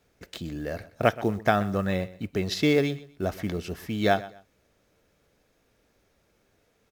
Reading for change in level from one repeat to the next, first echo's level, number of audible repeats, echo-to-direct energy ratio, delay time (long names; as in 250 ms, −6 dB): −11.5 dB, −18.0 dB, 2, −17.5 dB, 125 ms